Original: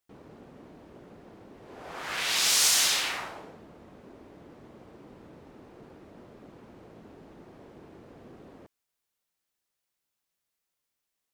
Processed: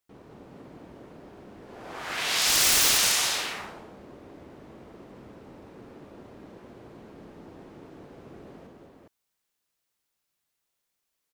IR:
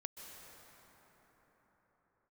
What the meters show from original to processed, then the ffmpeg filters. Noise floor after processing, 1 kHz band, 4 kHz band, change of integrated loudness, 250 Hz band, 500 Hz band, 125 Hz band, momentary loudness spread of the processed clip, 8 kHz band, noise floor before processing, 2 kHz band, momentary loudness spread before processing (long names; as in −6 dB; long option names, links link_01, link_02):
−81 dBFS, +3.5 dB, +2.0 dB, +2.0 dB, +4.0 dB, +4.0 dB, +4.5 dB, 17 LU, +2.5 dB, −84 dBFS, +3.0 dB, 21 LU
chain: -af "aecho=1:1:53|201|216|413:0.447|0.422|0.398|0.708,aeval=exprs='(mod(4.73*val(0)+1,2)-1)/4.73':channel_layout=same"